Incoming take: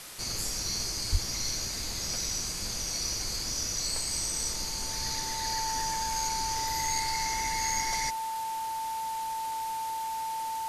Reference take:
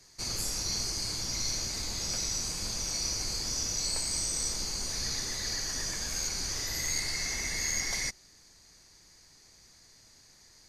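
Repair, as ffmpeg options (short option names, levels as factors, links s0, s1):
-filter_complex "[0:a]bandreject=f=890:w=30,asplit=3[s0][s1][s2];[s0]afade=t=out:st=1.11:d=0.02[s3];[s1]highpass=f=140:w=0.5412,highpass=f=140:w=1.3066,afade=t=in:st=1.11:d=0.02,afade=t=out:st=1.23:d=0.02[s4];[s2]afade=t=in:st=1.23:d=0.02[s5];[s3][s4][s5]amix=inputs=3:normalize=0,afwtdn=0.0071"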